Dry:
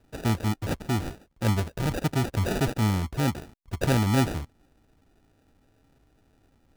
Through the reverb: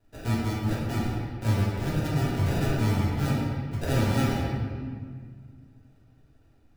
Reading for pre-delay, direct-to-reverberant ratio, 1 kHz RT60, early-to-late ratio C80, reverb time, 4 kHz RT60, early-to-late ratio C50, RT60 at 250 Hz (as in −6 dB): 3 ms, −8.0 dB, 1.7 s, 0.5 dB, 1.8 s, 1.3 s, −1.5 dB, 2.7 s